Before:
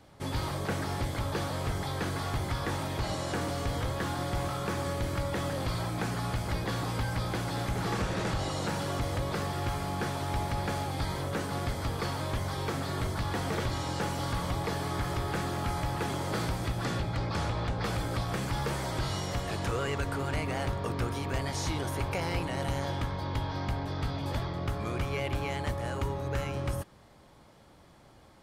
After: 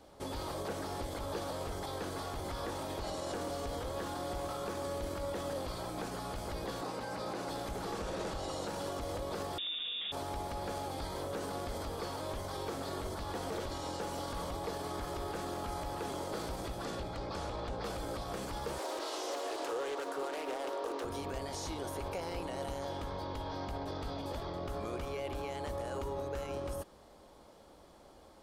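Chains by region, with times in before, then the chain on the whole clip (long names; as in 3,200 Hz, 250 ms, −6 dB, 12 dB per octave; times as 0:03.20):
0:06.81–0:07.49: high-pass filter 150 Hz + high-shelf EQ 10,000 Hz −11 dB + notch filter 3,300 Hz, Q 9.8
0:09.58–0:10.12: low-shelf EQ 190 Hz +10 dB + voice inversion scrambler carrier 3,600 Hz
0:18.78–0:21.05: Butterworth high-pass 290 Hz 48 dB per octave + highs frequency-modulated by the lows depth 0.3 ms
whole clip: brickwall limiter −29.5 dBFS; octave-band graphic EQ 125/500/2,000 Hz −12/+4/−6 dB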